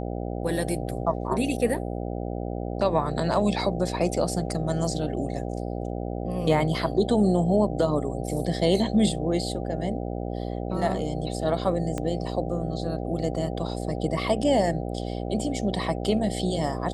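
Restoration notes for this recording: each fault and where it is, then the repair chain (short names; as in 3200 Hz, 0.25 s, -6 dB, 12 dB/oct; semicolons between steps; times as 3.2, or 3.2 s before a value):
buzz 60 Hz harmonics 13 -31 dBFS
11.98 pop -17 dBFS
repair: de-click; de-hum 60 Hz, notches 13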